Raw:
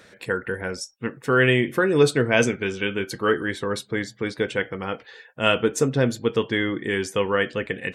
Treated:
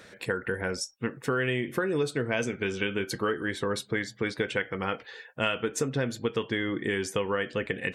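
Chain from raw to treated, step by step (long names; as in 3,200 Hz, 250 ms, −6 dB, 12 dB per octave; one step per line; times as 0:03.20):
0:03.84–0:06.50: dynamic equaliser 2,000 Hz, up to +5 dB, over −35 dBFS, Q 0.73
downward compressor 6 to 1, threshold −25 dBFS, peak gain reduction 13 dB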